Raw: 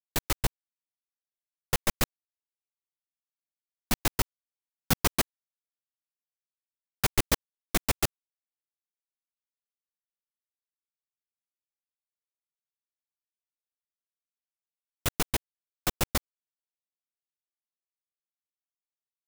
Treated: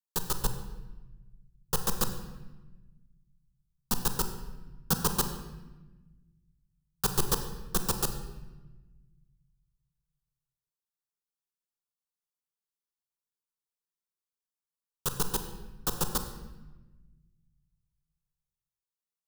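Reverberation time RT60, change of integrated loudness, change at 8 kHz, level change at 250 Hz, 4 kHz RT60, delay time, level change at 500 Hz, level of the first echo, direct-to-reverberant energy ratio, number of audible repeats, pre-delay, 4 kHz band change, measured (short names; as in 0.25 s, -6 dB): 1.1 s, -1.5 dB, -0.5 dB, -1.5 dB, 0.90 s, none, -2.0 dB, none, 6.5 dB, none, 30 ms, -3.0 dB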